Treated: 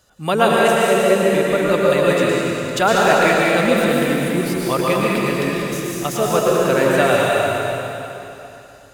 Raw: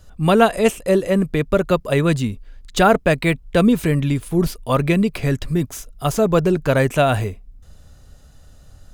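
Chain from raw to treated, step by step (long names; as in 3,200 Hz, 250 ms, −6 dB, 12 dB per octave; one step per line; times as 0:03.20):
high-pass filter 460 Hz 6 dB per octave
on a send: echo with a time of its own for lows and highs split 1,200 Hz, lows 125 ms, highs 196 ms, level −8.5 dB
on the sum: dense smooth reverb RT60 3 s, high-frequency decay 0.9×, pre-delay 95 ms, DRR −4.5 dB
level −1 dB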